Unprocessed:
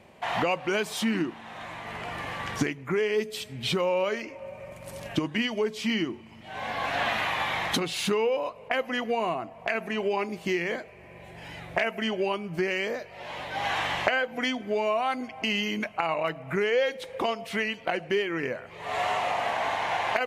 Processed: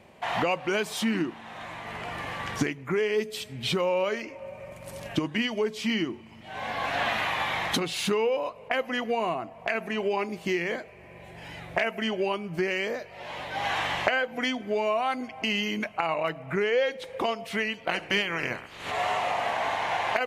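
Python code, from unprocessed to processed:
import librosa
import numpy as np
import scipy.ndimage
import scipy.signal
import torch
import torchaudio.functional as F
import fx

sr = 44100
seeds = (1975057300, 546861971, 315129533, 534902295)

y = fx.high_shelf(x, sr, hz=9300.0, db=-8.5, at=(16.46, 17.04))
y = fx.spec_clip(y, sr, under_db=19, at=(17.89, 18.9), fade=0.02)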